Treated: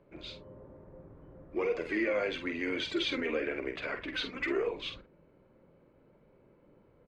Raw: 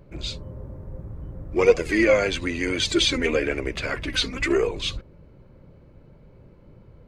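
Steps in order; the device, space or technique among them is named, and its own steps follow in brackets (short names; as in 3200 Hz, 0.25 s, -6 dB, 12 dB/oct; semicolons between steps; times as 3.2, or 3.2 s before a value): DJ mixer with the lows and highs turned down (three-band isolator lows -15 dB, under 200 Hz, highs -21 dB, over 3700 Hz; limiter -15.5 dBFS, peak gain reduction 10.5 dB); doubler 48 ms -8 dB; gain -7.5 dB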